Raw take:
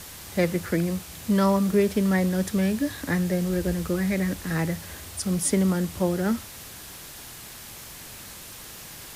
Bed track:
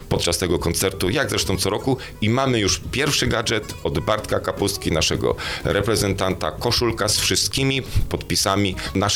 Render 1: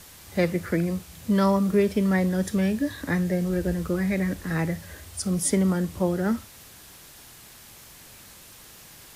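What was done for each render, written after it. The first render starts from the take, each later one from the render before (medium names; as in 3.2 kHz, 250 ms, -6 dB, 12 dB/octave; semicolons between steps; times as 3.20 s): noise print and reduce 6 dB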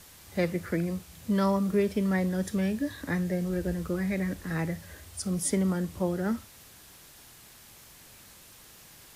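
trim -4.5 dB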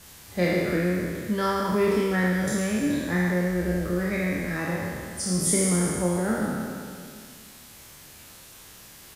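spectral sustain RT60 2.30 s; doubling 28 ms -5 dB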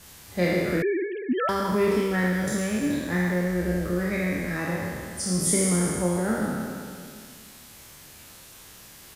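0.82–1.49 s: formants replaced by sine waves; 2.00–3.49 s: companding laws mixed up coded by A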